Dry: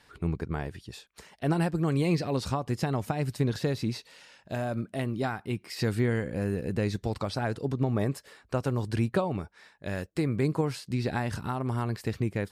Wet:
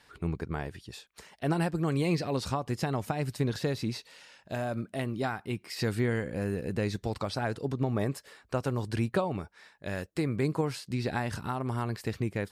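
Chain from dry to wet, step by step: low shelf 380 Hz -3 dB

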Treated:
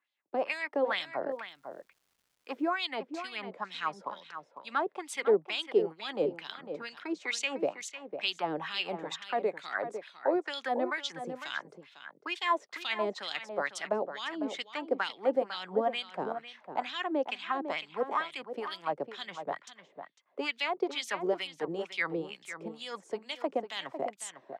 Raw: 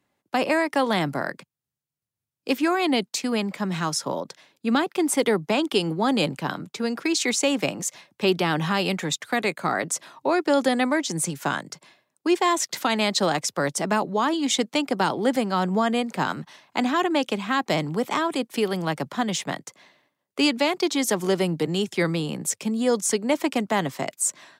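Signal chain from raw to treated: wah 2.2 Hz 420–3700 Hz, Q 3.1; outdoor echo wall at 86 m, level -9 dB; 1.3–2.79 crackle 550/s -61 dBFS

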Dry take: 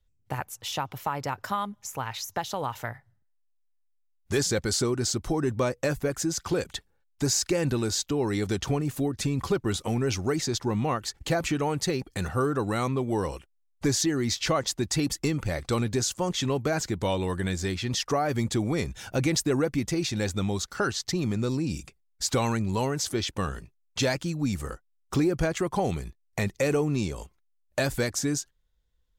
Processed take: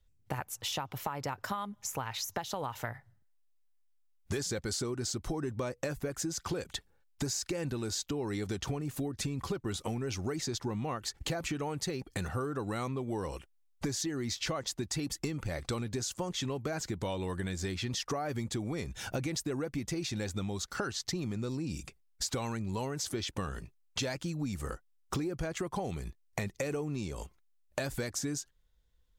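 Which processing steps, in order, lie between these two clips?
compressor 6:1, threshold -34 dBFS, peak gain reduction 13 dB; gain +1.5 dB

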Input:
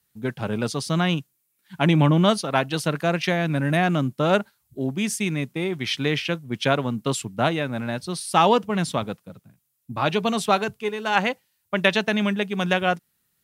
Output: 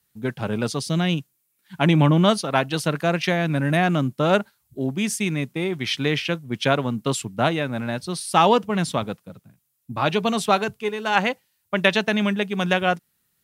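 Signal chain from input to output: 0.79–1.19 bell 1100 Hz -8.5 dB 1.1 oct; gain +1 dB

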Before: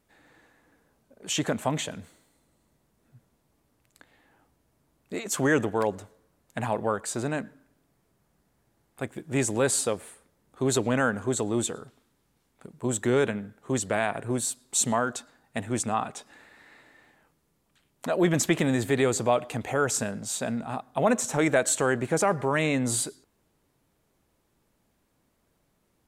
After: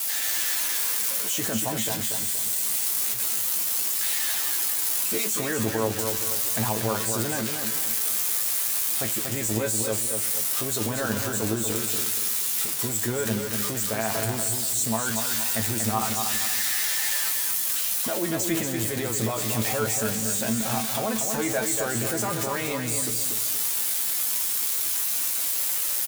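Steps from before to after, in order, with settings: switching spikes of -18.5 dBFS; in parallel at +3 dB: negative-ratio compressor -29 dBFS, ratio -0.5; on the sum: resonator 110 Hz, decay 0.17 s, harmonics all, mix 90%; feedback echo 0.237 s, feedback 38%, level -5.5 dB

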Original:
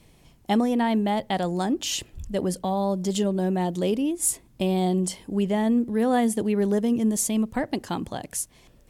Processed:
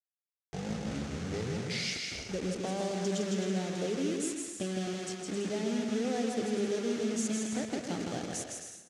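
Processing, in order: tape start at the beginning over 2.49 s; low shelf 180 Hz +8 dB; notches 50/100/150/200/250 Hz; compressor 8:1, threshold -25 dBFS, peak gain reduction 10 dB; soft clip -18.5 dBFS, distortion -25 dB; requantised 6-bit, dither none; speaker cabinet 130–8400 Hz, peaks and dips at 450 Hz +5 dB, 1000 Hz -8 dB, 6100 Hz +5 dB; bouncing-ball echo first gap 0.16 s, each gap 0.65×, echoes 5; on a send at -11.5 dB: reverb RT60 1.2 s, pre-delay 0.118 s; on the sum: gain -6 dB

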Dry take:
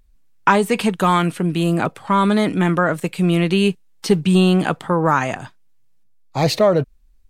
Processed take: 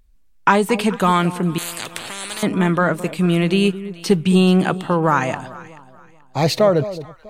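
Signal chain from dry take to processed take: on a send: echo with dull and thin repeats by turns 0.216 s, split 990 Hz, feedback 53%, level -13 dB; 1.58–2.43 on the sum: spectral compressor 10:1

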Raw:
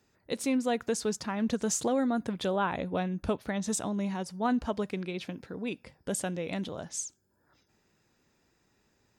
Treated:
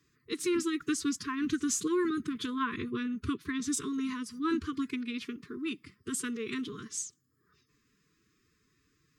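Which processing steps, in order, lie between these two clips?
formant-preserving pitch shift +5 st; brick-wall FIR band-stop 470–1000 Hz

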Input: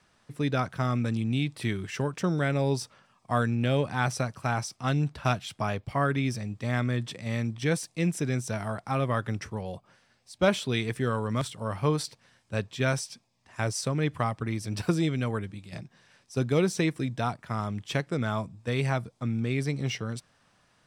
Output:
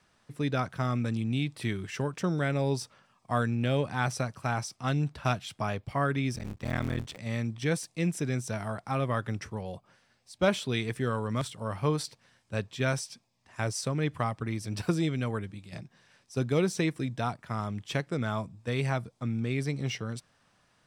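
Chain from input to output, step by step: 6.35–7.19 cycle switcher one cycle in 3, muted; gain -2 dB

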